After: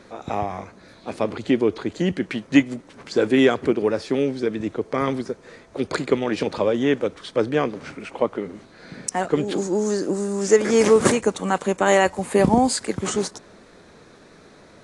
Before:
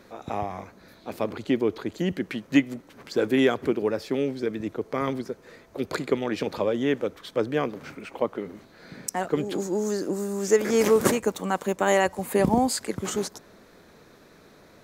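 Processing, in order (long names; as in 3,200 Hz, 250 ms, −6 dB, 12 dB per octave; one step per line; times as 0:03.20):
level +4.5 dB
AAC 48 kbit/s 22,050 Hz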